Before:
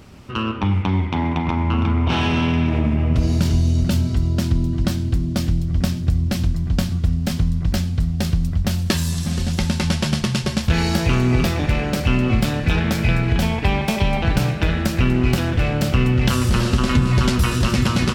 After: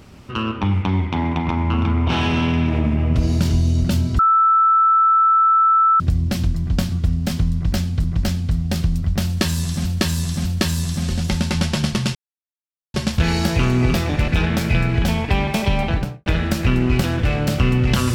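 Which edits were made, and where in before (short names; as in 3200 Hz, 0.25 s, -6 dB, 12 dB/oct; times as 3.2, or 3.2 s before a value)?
4.19–6 bleep 1320 Hz -11 dBFS
7.53–8.04 loop, 2 plays
8.74–9.34 loop, 3 plays
10.44 insert silence 0.79 s
11.78–12.62 cut
14.18–14.6 studio fade out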